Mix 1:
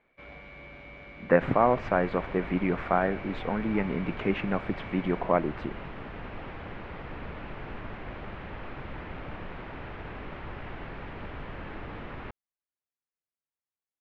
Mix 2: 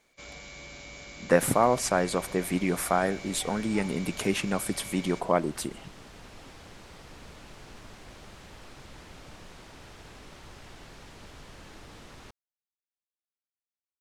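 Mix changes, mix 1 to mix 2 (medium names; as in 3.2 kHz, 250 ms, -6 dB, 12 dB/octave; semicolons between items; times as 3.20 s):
second sound -9.0 dB; master: remove low-pass 2.5 kHz 24 dB/octave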